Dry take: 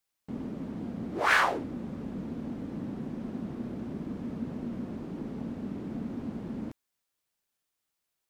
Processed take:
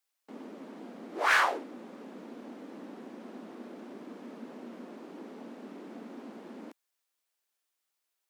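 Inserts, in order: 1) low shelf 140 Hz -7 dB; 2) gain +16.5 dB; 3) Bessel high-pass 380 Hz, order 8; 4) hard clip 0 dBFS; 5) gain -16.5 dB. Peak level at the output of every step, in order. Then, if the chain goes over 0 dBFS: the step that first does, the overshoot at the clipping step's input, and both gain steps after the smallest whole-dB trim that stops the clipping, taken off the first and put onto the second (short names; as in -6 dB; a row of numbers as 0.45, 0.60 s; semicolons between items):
-10.0, +6.5, +6.0, 0.0, -16.5 dBFS; step 2, 6.0 dB; step 2 +10.5 dB, step 5 -10.5 dB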